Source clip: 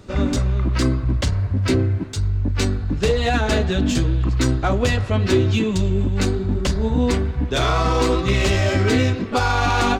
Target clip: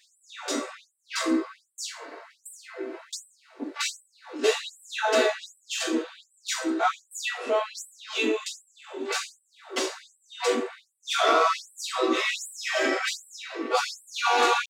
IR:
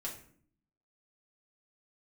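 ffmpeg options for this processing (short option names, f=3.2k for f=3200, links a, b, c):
-filter_complex "[0:a]atempo=0.68[a];[1:a]atrim=start_sample=2205,afade=t=out:st=0.27:d=0.01,atrim=end_sample=12348[b];[a][b]afir=irnorm=-1:irlink=0,afftfilt=real='re*gte(b*sr/1024,250*pow(7700/250,0.5+0.5*sin(2*PI*1.3*pts/sr)))':imag='im*gte(b*sr/1024,250*pow(7700/250,0.5+0.5*sin(2*PI*1.3*pts/sr)))':win_size=1024:overlap=0.75"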